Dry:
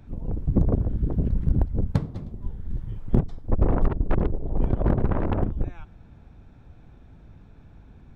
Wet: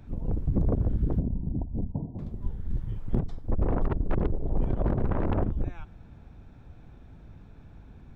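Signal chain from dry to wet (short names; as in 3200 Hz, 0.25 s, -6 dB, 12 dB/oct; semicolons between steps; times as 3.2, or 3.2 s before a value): limiter -16.5 dBFS, peak gain reduction 7.5 dB; 1.2–2.19 rippled Chebyshev low-pass 990 Hz, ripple 6 dB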